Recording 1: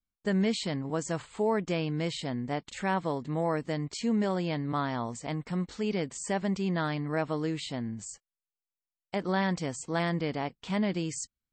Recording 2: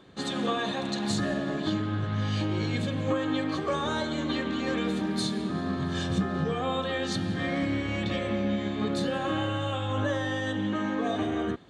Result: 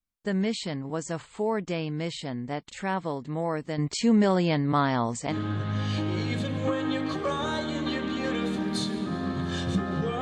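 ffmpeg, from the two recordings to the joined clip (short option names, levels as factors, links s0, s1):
-filter_complex "[0:a]asettb=1/sr,asplit=3[s0][s1][s2];[s0]atrim=end=3.784[s3];[s1]atrim=start=3.78:end=5.37,asetpts=PTS-STARTPTS,afade=t=in:d=0.004:c=qsin,afade=t=out:st=1.586:d=0.004:c=qsin,acontrast=75[s4];[s2]atrim=start=5.366[s5];[s3][s4]acrossfade=d=0.004:c1=hsin:c2=qsin[s6];[s6][s5]acrossfade=d=0.004:c1=qsin:c2=hsin,apad=whole_dur=10.21,atrim=end=10.21,atrim=end=5.37,asetpts=PTS-STARTPTS[s7];[1:a]atrim=start=1.7:end=6.64,asetpts=PTS-STARTPTS[s8];[s7][s8]acrossfade=d=0.1:c1=tri:c2=tri"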